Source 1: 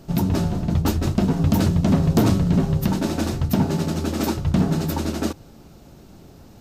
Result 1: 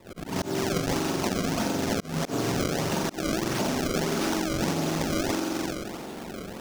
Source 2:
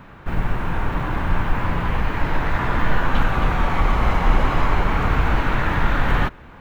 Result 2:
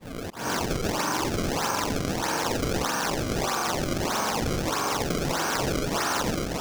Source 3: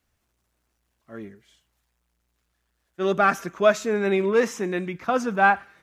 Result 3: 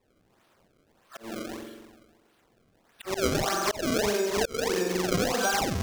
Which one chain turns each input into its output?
in parallel at -11.5 dB: sine folder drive 10 dB, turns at -3.5 dBFS; on the sum: high-pass 280 Hz 12 dB/octave; phase dispersion lows, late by 82 ms, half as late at 1 kHz; hard clipper -5.5 dBFS; band-stop 2 kHz, Q 5.2; on a send: flutter echo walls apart 7.5 m, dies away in 1.4 s; on the sum: slow attack 396 ms; compression 12:1, threshold -25 dBFS; decimation with a swept rate 28×, swing 160% 1.6 Hz; dynamic bell 5.8 kHz, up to +7 dB, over -52 dBFS, Q 1.8; trim +1 dB

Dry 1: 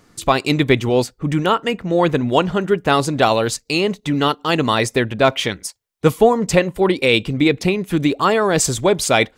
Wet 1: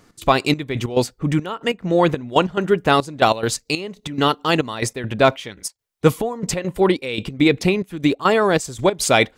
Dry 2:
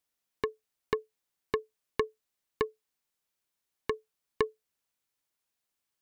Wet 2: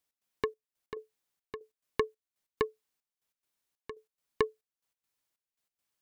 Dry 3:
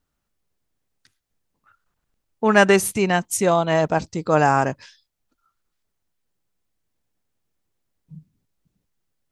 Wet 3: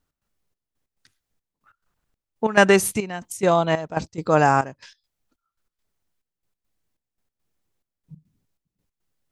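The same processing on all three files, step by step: trance gate "x.xxx..x.xxxx.." 140 bpm -12 dB

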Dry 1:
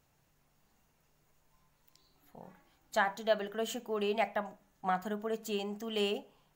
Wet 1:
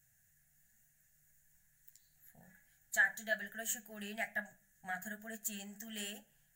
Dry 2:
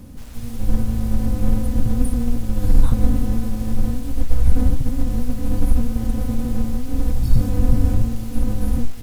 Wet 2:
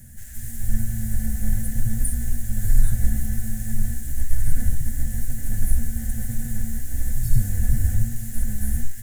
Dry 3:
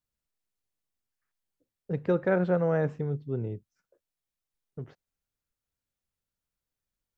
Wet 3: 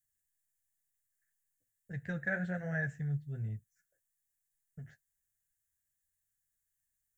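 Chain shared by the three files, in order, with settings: peaking EQ 220 Hz +11 dB 0.33 oct; flange 1.1 Hz, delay 6.9 ms, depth 8.1 ms, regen -31%; FFT filter 140 Hz 0 dB, 240 Hz -18 dB, 440 Hz -19 dB, 700 Hz -7 dB, 1.1 kHz -25 dB, 1.7 kHz +11 dB, 2.4 kHz -5 dB, 4.9 kHz -4 dB, 7.1 kHz +12 dB

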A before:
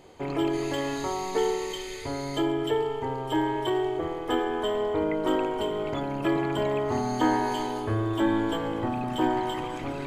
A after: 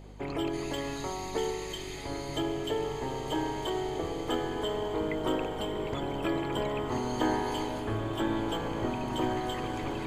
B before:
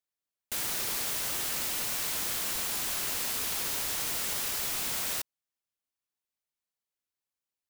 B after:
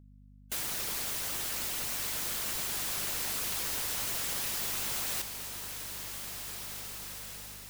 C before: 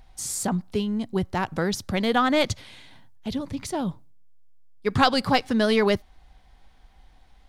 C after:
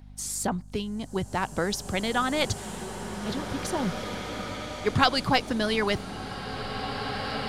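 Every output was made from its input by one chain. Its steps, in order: hum 50 Hz, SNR 16 dB; harmonic-percussive split harmonic -7 dB; swelling reverb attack 2300 ms, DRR 5.5 dB

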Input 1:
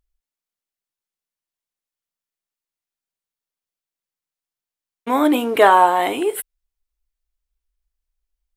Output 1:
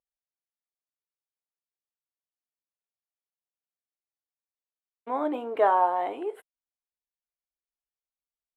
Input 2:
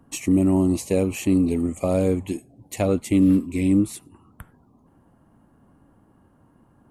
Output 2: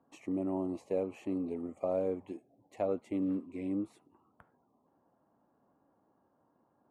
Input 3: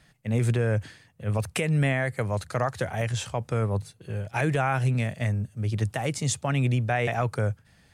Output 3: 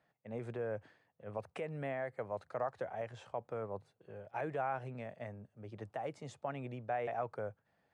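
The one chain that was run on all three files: band-pass filter 670 Hz, Q 1.1; trim -8 dB

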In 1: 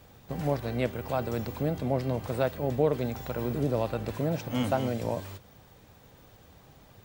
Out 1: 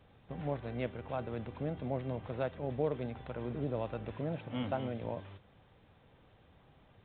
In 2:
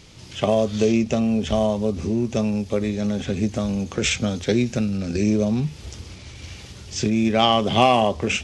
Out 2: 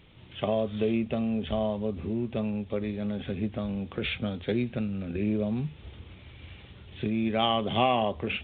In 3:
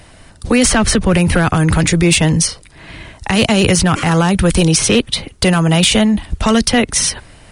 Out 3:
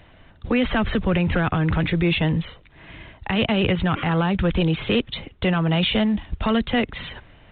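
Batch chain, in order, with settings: trim -8 dB; µ-law 64 kbps 8 kHz

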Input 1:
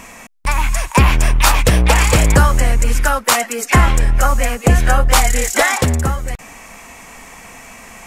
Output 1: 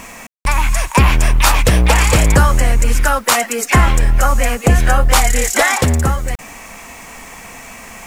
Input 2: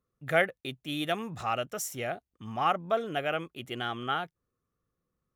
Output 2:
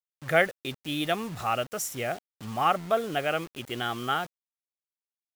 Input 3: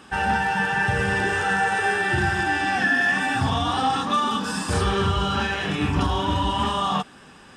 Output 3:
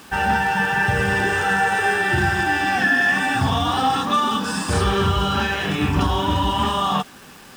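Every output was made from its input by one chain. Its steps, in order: in parallel at -1.5 dB: peak limiter -9.5 dBFS; on the sum: bit crusher 7-bit; trim -2.5 dB

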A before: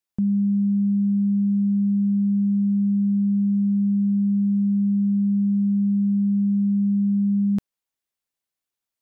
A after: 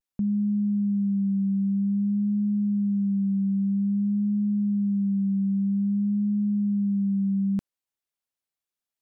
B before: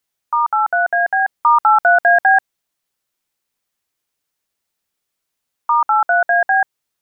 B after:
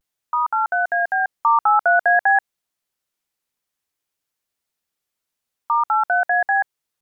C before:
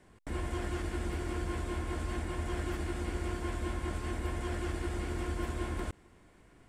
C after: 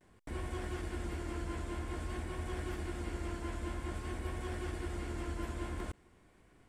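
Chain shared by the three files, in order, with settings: vibrato 0.51 Hz 44 cents; trim -4 dB

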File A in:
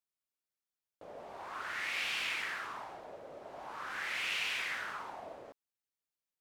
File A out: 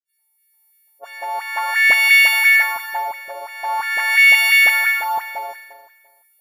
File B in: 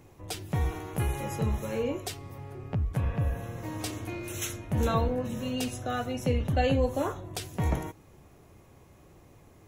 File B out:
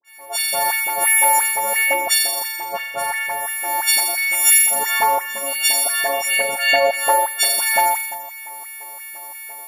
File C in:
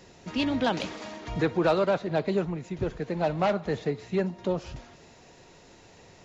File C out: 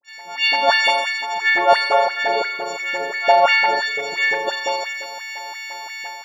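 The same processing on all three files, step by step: partials quantised in pitch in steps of 4 st; in parallel at -3 dB: compression, threshold -41 dBFS; on the sum: flutter echo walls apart 7.2 m, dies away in 1.4 s; LFO high-pass square 2.9 Hz 700–1900 Hz; level rider gain up to 8 dB; high-pass 130 Hz 12 dB/octave; de-hum 399.6 Hz, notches 2; phase dispersion highs, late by 49 ms, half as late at 1.2 kHz; attacks held to a fixed rise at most 500 dB/s

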